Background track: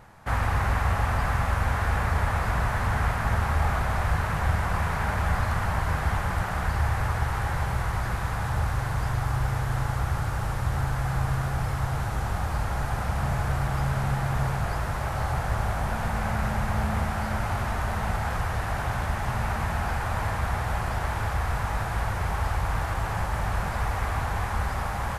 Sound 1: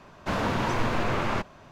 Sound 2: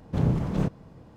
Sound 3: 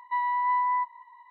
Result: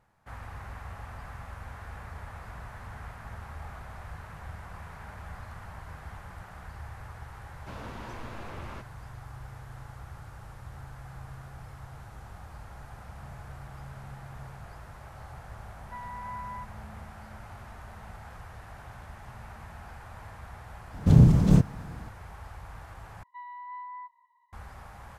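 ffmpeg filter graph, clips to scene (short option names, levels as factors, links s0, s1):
-filter_complex "[3:a]asplit=2[s0][s1];[0:a]volume=0.133[s2];[2:a]bass=f=250:g=9,treble=f=4000:g=11[s3];[s2]asplit=2[s4][s5];[s4]atrim=end=23.234[s6];[s1]atrim=end=1.3,asetpts=PTS-STARTPTS,volume=0.158[s7];[s5]atrim=start=24.526[s8];[1:a]atrim=end=1.71,asetpts=PTS-STARTPTS,volume=0.158,afade=t=in:d=0.004:c=hsin,afade=t=out:st=1.706:d=0.004:c=hsin,adelay=7400[s9];[s0]atrim=end=1.3,asetpts=PTS-STARTPTS,volume=0.188,afade=t=in:d=0.004:c=hsin,afade=t=out:st=1.296:d=0.004:c=hsin,adelay=15800[s10];[s3]atrim=end=1.16,asetpts=PTS-STARTPTS,afade=t=in:d=0.004:c=hsin,afade=t=out:st=1.156:d=0.004:c=hsin,adelay=20930[s11];[s6][s7]acrossfade=d=0.004:c1=hsin:c2=hsin[s12];[s12][s8]acrossfade=d=0.004:c1=hsin:c2=hsin[s13];[s13][s9][s10][s11]amix=inputs=4:normalize=0"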